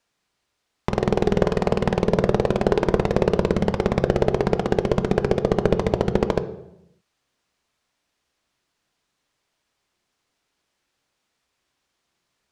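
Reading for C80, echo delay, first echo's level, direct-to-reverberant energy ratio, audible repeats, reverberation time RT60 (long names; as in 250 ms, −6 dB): 16.0 dB, no echo audible, no echo audible, 10.5 dB, no echo audible, 0.80 s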